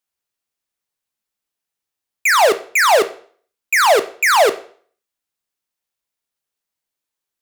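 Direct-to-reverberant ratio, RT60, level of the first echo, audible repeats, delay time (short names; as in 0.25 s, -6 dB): 10.0 dB, 0.50 s, none, none, none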